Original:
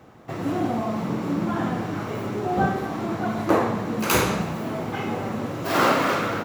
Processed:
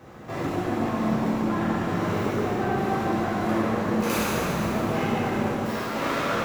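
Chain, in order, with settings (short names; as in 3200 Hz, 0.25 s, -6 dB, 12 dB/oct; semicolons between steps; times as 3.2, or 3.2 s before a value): compressor, threshold -26 dBFS, peak gain reduction 11 dB; soft clip -28.5 dBFS, distortion -12 dB; 5.5–5.96 resonator 81 Hz, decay 0.28 s, harmonics all, mix 70%; plate-style reverb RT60 2.8 s, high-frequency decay 0.75×, pre-delay 0 ms, DRR -7.5 dB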